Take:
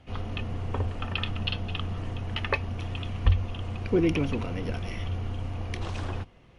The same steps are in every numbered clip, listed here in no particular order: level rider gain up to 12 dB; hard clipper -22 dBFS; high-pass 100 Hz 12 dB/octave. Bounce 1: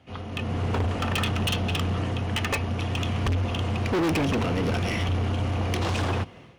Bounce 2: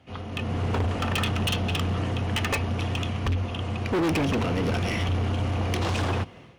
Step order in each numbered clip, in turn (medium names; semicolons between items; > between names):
high-pass > level rider > hard clipper; level rider > high-pass > hard clipper